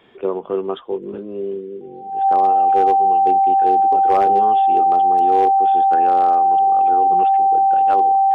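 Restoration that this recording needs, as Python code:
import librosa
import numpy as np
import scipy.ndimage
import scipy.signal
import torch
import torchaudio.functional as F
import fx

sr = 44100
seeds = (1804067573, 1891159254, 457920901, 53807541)

y = fx.fix_declip(x, sr, threshold_db=-8.0)
y = fx.notch(y, sr, hz=780.0, q=30.0)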